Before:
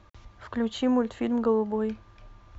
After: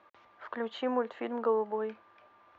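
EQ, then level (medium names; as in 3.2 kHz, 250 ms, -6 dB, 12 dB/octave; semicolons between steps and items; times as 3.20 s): band-pass 480–2400 Hz; 0.0 dB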